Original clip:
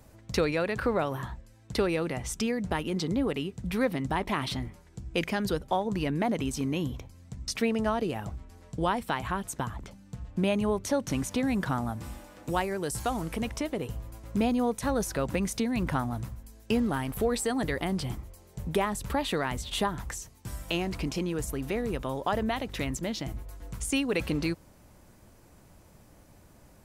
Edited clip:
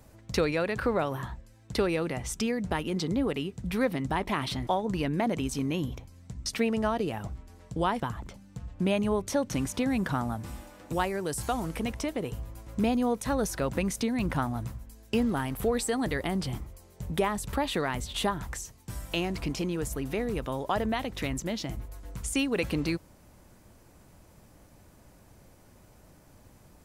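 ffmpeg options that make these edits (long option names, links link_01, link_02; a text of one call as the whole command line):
ffmpeg -i in.wav -filter_complex "[0:a]asplit=3[link_01][link_02][link_03];[link_01]atrim=end=4.672[link_04];[link_02]atrim=start=5.688:end=9.022[link_05];[link_03]atrim=start=9.568[link_06];[link_04][link_05]acrossfade=duration=0.004:curve1=hsin:curve2=hsin[link_07];[link_07][link_06]acrossfade=duration=0.004:curve1=hsin:curve2=hsin" out.wav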